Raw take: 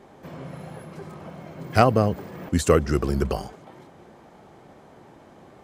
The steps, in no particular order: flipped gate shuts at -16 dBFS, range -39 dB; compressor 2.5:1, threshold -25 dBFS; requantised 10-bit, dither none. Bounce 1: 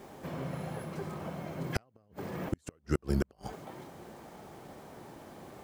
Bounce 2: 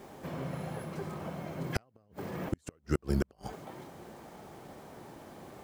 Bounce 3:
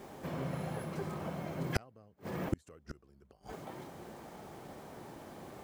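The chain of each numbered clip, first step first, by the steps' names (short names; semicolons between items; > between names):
requantised > compressor > flipped gate; compressor > requantised > flipped gate; requantised > flipped gate > compressor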